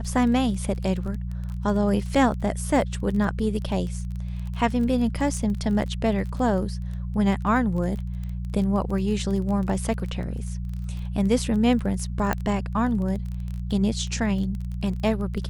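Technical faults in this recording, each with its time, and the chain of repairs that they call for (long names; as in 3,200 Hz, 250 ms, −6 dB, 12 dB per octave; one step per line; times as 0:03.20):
surface crackle 23 per second −31 dBFS
mains hum 60 Hz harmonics 3 −30 dBFS
0:12.33: click −11 dBFS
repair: click removal
hum removal 60 Hz, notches 3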